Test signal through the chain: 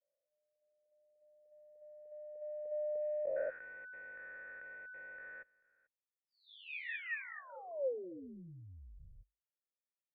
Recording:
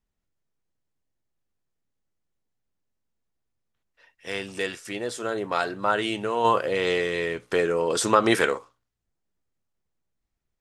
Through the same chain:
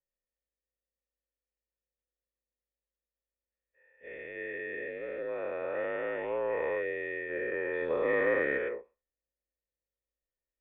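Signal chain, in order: spectral dilation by 0.48 s; frequency shift -53 Hz; vocal tract filter e; gain -4.5 dB

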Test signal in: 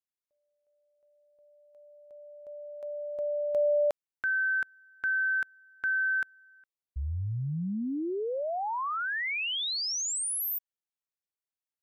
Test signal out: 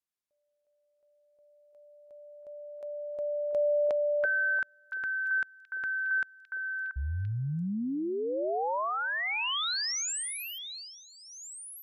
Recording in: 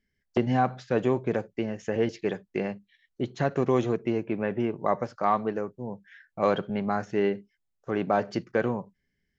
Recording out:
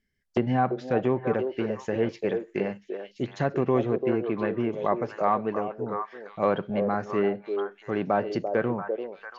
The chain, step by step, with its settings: delay with a stepping band-pass 0.341 s, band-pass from 470 Hz, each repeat 1.4 oct, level -3 dB; treble ducked by the level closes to 2600 Hz, closed at -20 dBFS

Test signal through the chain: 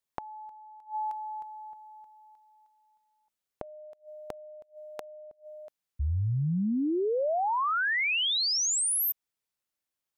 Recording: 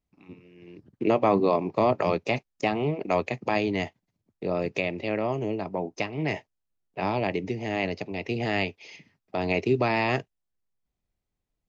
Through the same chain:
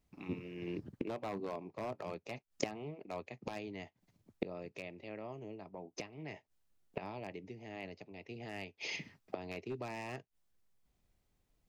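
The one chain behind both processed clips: wavefolder -14.5 dBFS; flipped gate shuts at -29 dBFS, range -24 dB; gain +6 dB

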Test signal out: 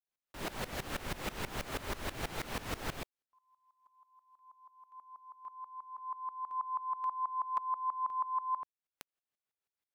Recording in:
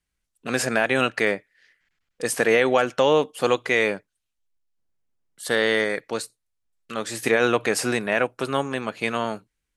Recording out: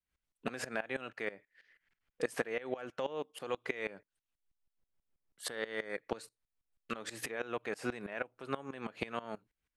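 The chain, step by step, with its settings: tone controls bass -3 dB, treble -8 dB; compressor 12:1, threshold -30 dBFS; dB-ramp tremolo swelling 6.2 Hz, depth 19 dB; gain +2 dB

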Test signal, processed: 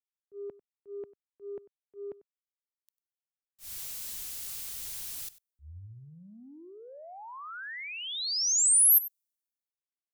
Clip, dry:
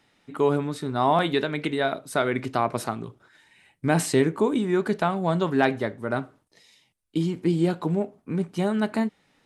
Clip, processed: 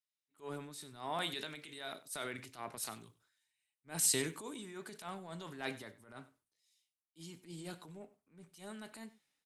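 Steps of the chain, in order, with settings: pre-emphasis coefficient 0.9; transient shaper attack -10 dB, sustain +5 dB; on a send: echo 96 ms -16.5 dB; on the sum: three-band expander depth 70%; gain -3.5 dB

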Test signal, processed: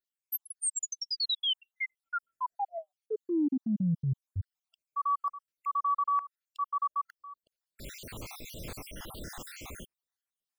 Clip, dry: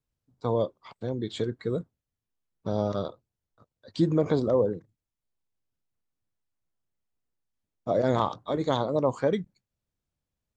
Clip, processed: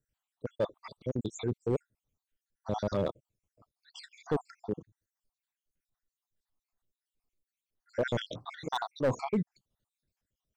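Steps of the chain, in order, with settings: random spectral dropouts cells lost 67%; transient shaper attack -5 dB, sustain +2 dB; overloaded stage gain 26 dB; gain +3.5 dB

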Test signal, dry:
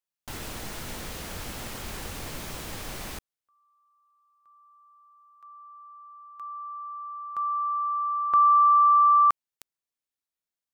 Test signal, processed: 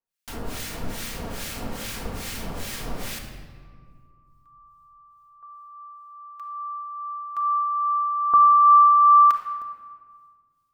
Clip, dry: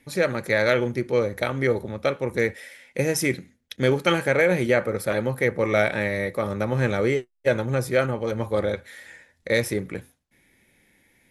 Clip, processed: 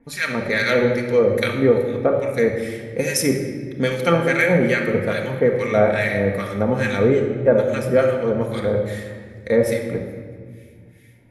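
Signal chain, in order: harmonic tremolo 2.4 Hz, depth 100%, crossover 1300 Hz; shoebox room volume 2600 m³, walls mixed, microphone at 1.7 m; gain +6 dB

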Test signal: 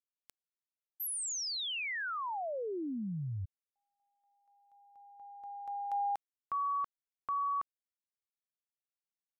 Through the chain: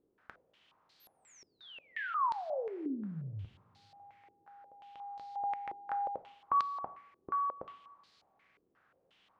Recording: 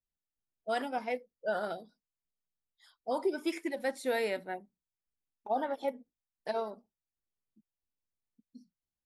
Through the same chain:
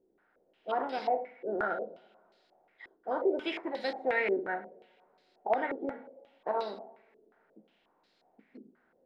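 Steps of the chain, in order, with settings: per-bin compression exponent 0.6; two-slope reverb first 0.49 s, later 2.3 s, from -19 dB, DRR 7.5 dB; stepped low-pass 5.6 Hz 380–4300 Hz; gain -5.5 dB

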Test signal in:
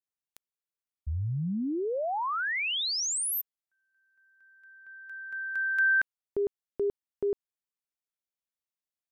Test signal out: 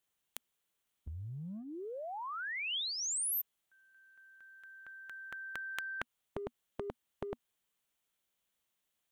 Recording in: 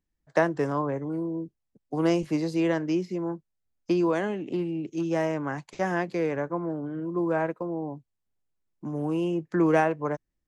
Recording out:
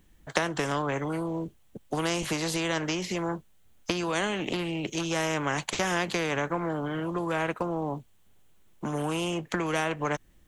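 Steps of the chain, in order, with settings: bell 240 Hz +9 dB 0.46 oct; compressor, threshold -27 dBFS; thirty-one-band EQ 250 Hz -11 dB, 3150 Hz +5 dB, 5000 Hz -7 dB; spectral compressor 2:1; gain +8.5 dB

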